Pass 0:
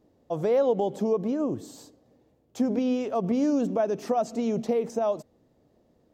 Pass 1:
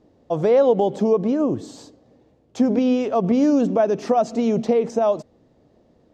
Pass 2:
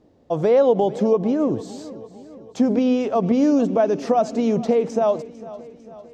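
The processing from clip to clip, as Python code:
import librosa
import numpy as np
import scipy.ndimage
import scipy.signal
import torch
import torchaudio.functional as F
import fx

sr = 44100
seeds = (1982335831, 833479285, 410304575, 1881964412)

y1 = scipy.signal.sosfilt(scipy.signal.butter(2, 6300.0, 'lowpass', fs=sr, output='sos'), x)
y1 = y1 * 10.0 ** (7.0 / 20.0)
y2 = fx.echo_feedback(y1, sr, ms=450, feedback_pct=54, wet_db=-17.5)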